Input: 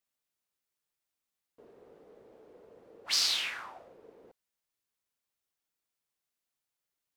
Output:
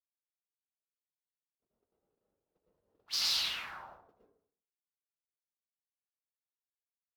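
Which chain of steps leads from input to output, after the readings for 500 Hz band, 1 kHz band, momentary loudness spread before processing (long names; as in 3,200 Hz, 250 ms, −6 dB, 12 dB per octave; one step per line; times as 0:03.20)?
−9.5 dB, −1.5 dB, 18 LU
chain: noise gate −52 dBFS, range −43 dB
octave-band graphic EQ 250/500/1,000/2,000/8,000 Hz −5/−11/−3/−8/−11 dB
dense smooth reverb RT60 0.57 s, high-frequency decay 0.4×, pre-delay 100 ms, DRR −3.5 dB
level that may rise only so fast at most 500 dB per second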